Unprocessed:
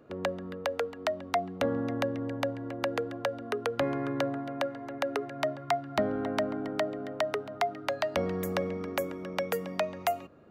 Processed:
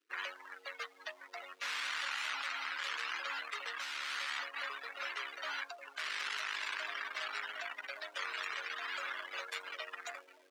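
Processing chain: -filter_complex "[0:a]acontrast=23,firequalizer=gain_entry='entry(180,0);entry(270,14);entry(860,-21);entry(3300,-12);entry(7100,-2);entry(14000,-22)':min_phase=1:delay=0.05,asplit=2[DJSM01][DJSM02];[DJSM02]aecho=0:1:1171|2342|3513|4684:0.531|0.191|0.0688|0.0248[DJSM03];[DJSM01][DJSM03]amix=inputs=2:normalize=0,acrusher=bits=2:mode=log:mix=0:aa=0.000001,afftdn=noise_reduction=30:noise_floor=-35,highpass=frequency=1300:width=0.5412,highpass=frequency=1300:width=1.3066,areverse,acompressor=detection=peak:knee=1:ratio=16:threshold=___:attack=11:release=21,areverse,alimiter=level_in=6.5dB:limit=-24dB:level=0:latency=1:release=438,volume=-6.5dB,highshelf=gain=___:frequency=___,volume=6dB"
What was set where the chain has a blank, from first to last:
-45dB, -7, 7100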